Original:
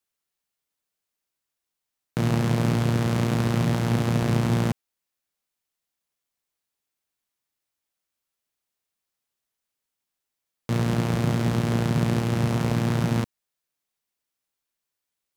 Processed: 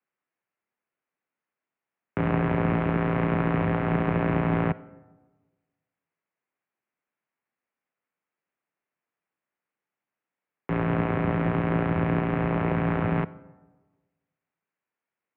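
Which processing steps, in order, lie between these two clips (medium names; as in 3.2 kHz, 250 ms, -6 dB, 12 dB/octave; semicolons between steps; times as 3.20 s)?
mistuned SSB -67 Hz 210–2500 Hz; algorithmic reverb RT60 1.3 s, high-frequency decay 0.4×, pre-delay 5 ms, DRR 18 dB; trim +3 dB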